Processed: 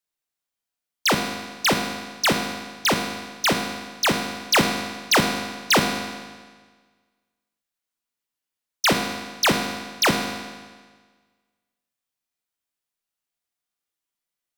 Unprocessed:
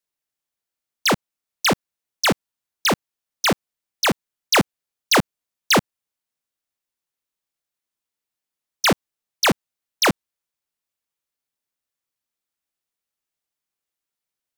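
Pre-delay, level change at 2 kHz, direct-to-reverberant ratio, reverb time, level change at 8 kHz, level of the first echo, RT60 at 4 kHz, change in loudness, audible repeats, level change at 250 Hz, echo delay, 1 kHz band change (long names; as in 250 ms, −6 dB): 34 ms, 0.0 dB, 4.0 dB, 1.5 s, −0.5 dB, no echo audible, 1.4 s, −1.0 dB, no echo audible, −0.5 dB, no echo audible, 0.0 dB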